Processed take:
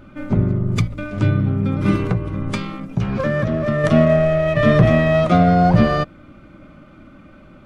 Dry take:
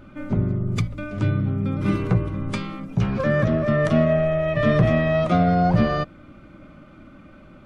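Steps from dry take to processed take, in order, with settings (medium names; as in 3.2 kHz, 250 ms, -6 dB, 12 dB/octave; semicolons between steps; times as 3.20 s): in parallel at -7 dB: crossover distortion -32.5 dBFS; 2.04–3.84 s: on the sum: compression 3:1, threshold -19 dBFS, peak gain reduction 6.5 dB; trim +2 dB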